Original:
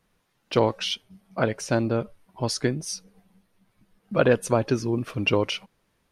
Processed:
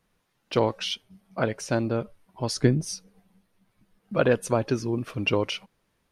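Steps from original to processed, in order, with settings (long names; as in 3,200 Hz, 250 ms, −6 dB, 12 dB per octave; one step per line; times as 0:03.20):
0:02.55–0:02.95: low-shelf EQ 330 Hz +10.5 dB
level −2 dB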